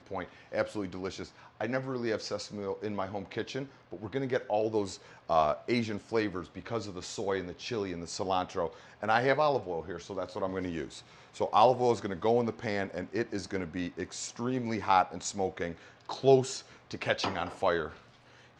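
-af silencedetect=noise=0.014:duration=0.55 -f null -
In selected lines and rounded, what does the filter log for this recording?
silence_start: 17.89
silence_end: 18.59 | silence_duration: 0.70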